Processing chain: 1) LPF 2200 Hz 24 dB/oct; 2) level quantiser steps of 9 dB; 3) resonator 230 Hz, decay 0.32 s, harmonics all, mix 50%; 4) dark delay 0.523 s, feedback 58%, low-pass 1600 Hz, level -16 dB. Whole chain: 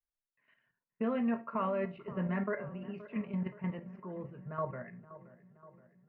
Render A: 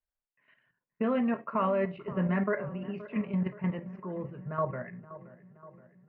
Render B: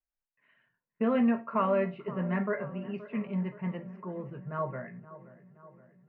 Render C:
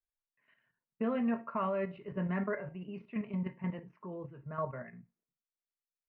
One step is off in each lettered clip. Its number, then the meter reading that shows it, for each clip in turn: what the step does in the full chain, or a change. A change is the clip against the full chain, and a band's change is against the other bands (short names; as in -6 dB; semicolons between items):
3, loudness change +5.0 LU; 2, momentary loudness spread change +2 LU; 4, echo-to-direct -17.0 dB to none